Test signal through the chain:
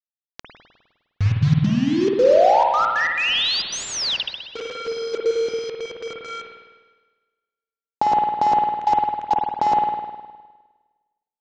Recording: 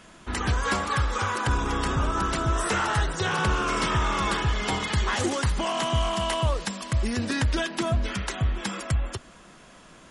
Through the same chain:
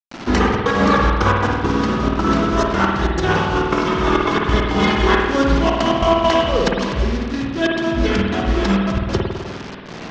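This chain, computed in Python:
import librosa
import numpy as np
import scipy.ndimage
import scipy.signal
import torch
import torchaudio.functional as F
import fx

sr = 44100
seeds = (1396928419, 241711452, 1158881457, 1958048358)

y = scipy.signal.sosfilt(scipy.signal.butter(4, 48.0, 'highpass', fs=sr, output='sos'), x)
y = fx.high_shelf(y, sr, hz=3000.0, db=2.0)
y = fx.step_gate(y, sr, bpm=137, pattern='.xxxx.xxxx.x.x', floor_db=-24.0, edge_ms=4.5)
y = fx.peak_eq(y, sr, hz=270.0, db=12.5, octaves=2.6)
y = np.repeat(y[::3], 3)[:len(y)]
y = fx.over_compress(y, sr, threshold_db=-22.0, ratio=-0.5)
y = fx.quant_dither(y, sr, seeds[0], bits=6, dither='none')
y = scipy.signal.sosfilt(scipy.signal.butter(6, 6100.0, 'lowpass', fs=sr, output='sos'), y)
y = fx.echo_filtered(y, sr, ms=174, feedback_pct=45, hz=3200.0, wet_db=-23)
y = fx.rev_spring(y, sr, rt60_s=1.3, pass_ms=(51,), chirp_ms=80, drr_db=-0.5)
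y = y * 10.0 ** (4.0 / 20.0)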